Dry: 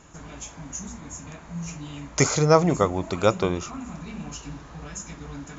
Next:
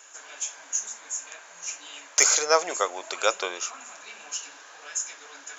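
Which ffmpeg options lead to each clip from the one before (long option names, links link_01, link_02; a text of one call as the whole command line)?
ffmpeg -i in.wav -af "highpass=frequency=480:width=0.5412,highpass=frequency=480:width=1.3066,equalizer=frequency=1600:width=3.9:gain=11,aexciter=amount=2.9:drive=4.6:freq=2400,volume=-3.5dB" out.wav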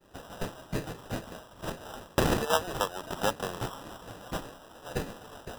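ffmpeg -i in.wav -filter_complex "[0:a]agate=range=-33dB:threshold=-43dB:ratio=3:detection=peak,asplit=2[link_01][link_02];[link_02]acompressor=threshold=-31dB:ratio=6,volume=2.5dB[link_03];[link_01][link_03]amix=inputs=2:normalize=0,acrusher=samples=20:mix=1:aa=0.000001,volume=-7.5dB" out.wav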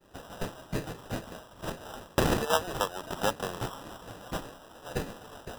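ffmpeg -i in.wav -af anull out.wav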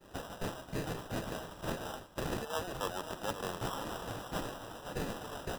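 ffmpeg -i in.wav -af "areverse,acompressor=threshold=-37dB:ratio=12,areverse,aecho=1:1:531|1062|1593|2124:0.282|0.113|0.0451|0.018,volume=3.5dB" out.wav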